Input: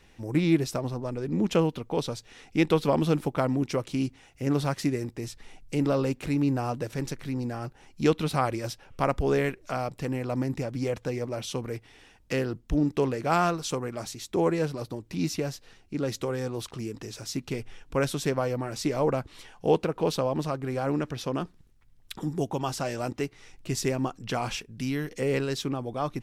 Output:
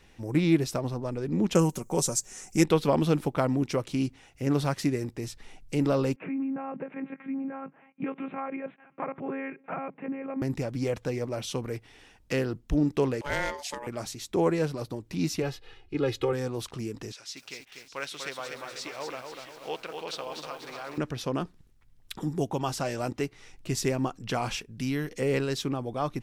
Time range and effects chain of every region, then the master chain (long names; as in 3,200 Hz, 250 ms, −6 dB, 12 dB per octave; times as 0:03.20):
0:01.55–0:02.64: high shelf with overshoot 5,100 Hz +12.5 dB, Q 3 + comb filter 5.4 ms, depth 47%
0:06.16–0:10.42: one-pitch LPC vocoder at 8 kHz 270 Hz + downward compressor, threshold −26 dBFS + Chebyshev band-pass filter 150–2,400 Hz, order 4
0:13.21–0:13.87: parametric band 460 Hz −12 dB 1.2 octaves + ring modulation 720 Hz
0:15.42–0:16.33: high shelf with overshoot 4,600 Hz −9 dB, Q 1.5 + comb filter 2.4 ms, depth 90%
0:17.12–0:20.98: resonant band-pass 2,900 Hz, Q 0.78 + single-tap delay 610 ms −14 dB + feedback echo at a low word length 244 ms, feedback 55%, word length 9 bits, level −5 dB
whole clip: no processing